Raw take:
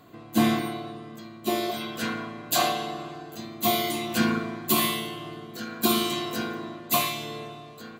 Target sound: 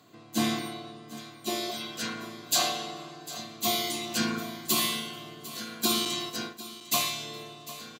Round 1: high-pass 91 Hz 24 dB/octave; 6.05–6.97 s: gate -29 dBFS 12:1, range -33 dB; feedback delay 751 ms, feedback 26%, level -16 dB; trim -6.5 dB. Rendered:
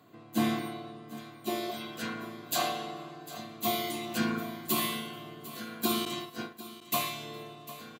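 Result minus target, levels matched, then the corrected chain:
8 kHz band -4.5 dB
high-pass 91 Hz 24 dB/octave; peaking EQ 5.8 kHz +11 dB 1.6 oct; 6.05–6.97 s: gate -29 dBFS 12:1, range -33 dB; feedback delay 751 ms, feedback 26%, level -16 dB; trim -6.5 dB

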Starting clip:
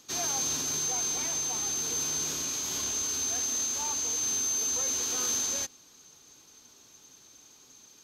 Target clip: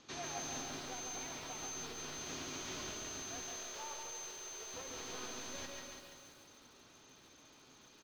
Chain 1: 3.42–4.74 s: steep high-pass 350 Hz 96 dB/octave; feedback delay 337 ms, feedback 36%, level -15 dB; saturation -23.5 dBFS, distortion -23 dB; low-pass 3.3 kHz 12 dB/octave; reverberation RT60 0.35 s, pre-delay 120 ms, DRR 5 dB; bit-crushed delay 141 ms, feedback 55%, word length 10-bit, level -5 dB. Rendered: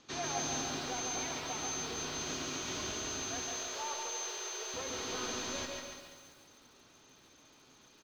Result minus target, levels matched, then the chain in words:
saturation: distortion -14 dB
3.42–4.74 s: steep high-pass 350 Hz 96 dB/octave; feedback delay 337 ms, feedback 36%, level -15 dB; saturation -35.5 dBFS, distortion -9 dB; low-pass 3.3 kHz 12 dB/octave; reverberation RT60 0.35 s, pre-delay 120 ms, DRR 5 dB; bit-crushed delay 141 ms, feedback 55%, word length 10-bit, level -5 dB

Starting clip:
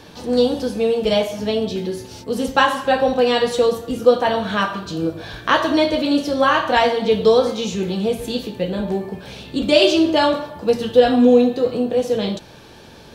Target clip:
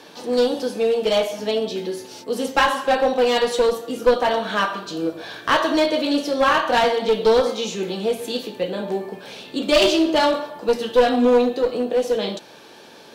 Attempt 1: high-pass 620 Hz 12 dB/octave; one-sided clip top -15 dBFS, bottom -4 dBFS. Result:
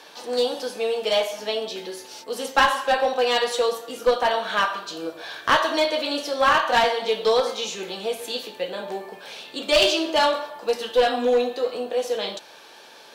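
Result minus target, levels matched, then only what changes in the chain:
250 Hz band -7.5 dB
change: high-pass 290 Hz 12 dB/octave

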